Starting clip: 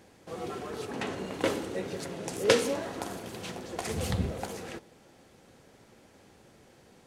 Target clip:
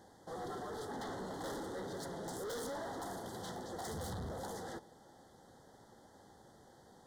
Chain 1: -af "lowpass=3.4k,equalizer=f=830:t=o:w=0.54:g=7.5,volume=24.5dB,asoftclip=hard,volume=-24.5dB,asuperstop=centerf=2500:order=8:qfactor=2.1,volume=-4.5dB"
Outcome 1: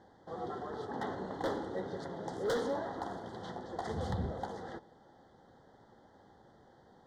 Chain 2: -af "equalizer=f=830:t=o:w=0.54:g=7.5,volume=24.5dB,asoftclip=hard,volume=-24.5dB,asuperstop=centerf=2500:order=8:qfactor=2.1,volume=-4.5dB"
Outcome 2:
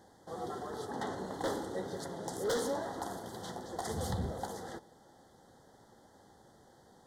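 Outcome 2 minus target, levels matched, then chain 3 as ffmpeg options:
overloaded stage: distortion -6 dB
-af "equalizer=f=830:t=o:w=0.54:g=7.5,volume=35.5dB,asoftclip=hard,volume=-35.5dB,asuperstop=centerf=2500:order=8:qfactor=2.1,volume=-4.5dB"

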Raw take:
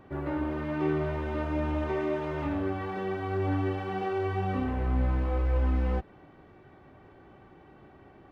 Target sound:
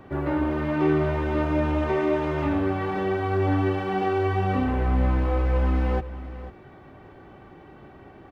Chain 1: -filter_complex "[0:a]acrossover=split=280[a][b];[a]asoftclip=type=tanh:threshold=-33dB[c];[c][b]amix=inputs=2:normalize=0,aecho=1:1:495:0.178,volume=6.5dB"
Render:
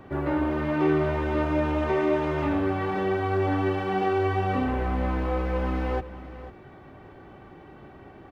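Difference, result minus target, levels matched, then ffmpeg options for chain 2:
soft clip: distortion +12 dB
-filter_complex "[0:a]acrossover=split=280[a][b];[a]asoftclip=type=tanh:threshold=-22.5dB[c];[c][b]amix=inputs=2:normalize=0,aecho=1:1:495:0.178,volume=6.5dB"

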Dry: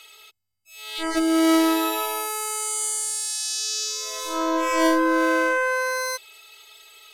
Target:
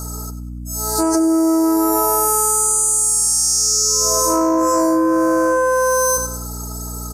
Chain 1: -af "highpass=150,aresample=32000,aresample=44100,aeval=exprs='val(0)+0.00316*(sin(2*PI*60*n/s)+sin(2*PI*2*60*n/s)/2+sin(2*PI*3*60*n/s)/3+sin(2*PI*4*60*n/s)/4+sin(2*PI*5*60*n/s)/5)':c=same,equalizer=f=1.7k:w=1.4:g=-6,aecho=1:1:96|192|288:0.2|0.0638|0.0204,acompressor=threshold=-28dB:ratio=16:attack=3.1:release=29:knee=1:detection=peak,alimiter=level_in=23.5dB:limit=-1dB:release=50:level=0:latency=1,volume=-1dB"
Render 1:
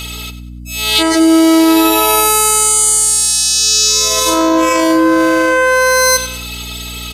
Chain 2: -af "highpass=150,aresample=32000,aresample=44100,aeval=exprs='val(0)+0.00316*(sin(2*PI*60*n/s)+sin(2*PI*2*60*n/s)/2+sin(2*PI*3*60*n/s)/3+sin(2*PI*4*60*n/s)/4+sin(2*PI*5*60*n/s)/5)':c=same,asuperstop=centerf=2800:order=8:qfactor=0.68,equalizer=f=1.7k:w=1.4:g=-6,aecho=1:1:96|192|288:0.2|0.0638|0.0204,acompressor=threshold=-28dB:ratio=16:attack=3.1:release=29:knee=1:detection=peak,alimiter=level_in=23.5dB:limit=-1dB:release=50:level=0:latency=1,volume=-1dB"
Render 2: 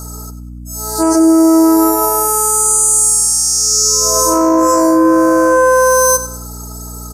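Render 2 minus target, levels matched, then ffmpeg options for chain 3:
compressor: peak gain reduction -7.5 dB
-af "highpass=150,aresample=32000,aresample=44100,aeval=exprs='val(0)+0.00316*(sin(2*PI*60*n/s)+sin(2*PI*2*60*n/s)/2+sin(2*PI*3*60*n/s)/3+sin(2*PI*4*60*n/s)/4+sin(2*PI*5*60*n/s)/5)':c=same,asuperstop=centerf=2800:order=8:qfactor=0.68,equalizer=f=1.7k:w=1.4:g=-6,aecho=1:1:96|192|288:0.2|0.0638|0.0204,acompressor=threshold=-36dB:ratio=16:attack=3.1:release=29:knee=1:detection=peak,alimiter=level_in=23.5dB:limit=-1dB:release=50:level=0:latency=1,volume=-1dB"

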